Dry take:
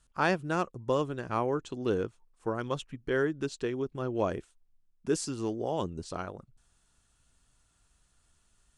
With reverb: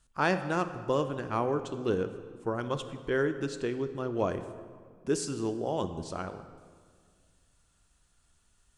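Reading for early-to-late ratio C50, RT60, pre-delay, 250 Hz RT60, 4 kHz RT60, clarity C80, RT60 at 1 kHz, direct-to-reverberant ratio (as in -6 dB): 10.5 dB, 1.9 s, 14 ms, 2.1 s, 1.3 s, 11.5 dB, 1.8 s, 9.5 dB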